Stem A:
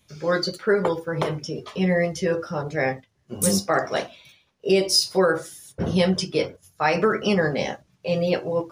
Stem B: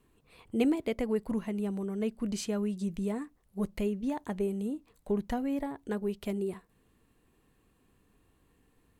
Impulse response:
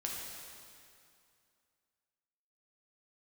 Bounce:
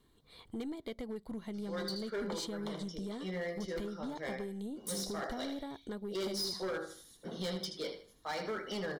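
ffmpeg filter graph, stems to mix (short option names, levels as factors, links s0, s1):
-filter_complex "[0:a]highpass=f=180:w=0.5412,highpass=f=180:w=1.3066,adelay=1450,volume=0.158,asplit=2[s0][s1];[s1]volume=0.335[s2];[1:a]acompressor=threshold=0.0141:ratio=4,aeval=exprs='(tanh(28.2*val(0)+0.4)-tanh(0.4))/28.2':c=same,volume=0.944,asplit=2[s3][s4];[s4]apad=whole_len=448284[s5];[s0][s5]sidechaincompress=threshold=0.01:ratio=8:attack=24:release=195[s6];[s2]aecho=0:1:78|156|234|312:1|0.3|0.09|0.027[s7];[s6][s3][s7]amix=inputs=3:normalize=0,equalizer=f=3900:w=2.5:g=11.5,volume=44.7,asoftclip=hard,volume=0.0224,asuperstop=centerf=2600:order=4:qfactor=6.2"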